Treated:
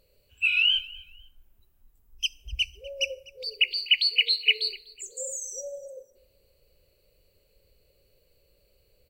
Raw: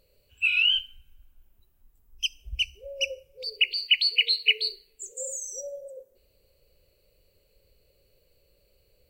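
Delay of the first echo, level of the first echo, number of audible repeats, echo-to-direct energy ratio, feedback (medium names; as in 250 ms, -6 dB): 249 ms, -22.0 dB, 2, -21.5 dB, 29%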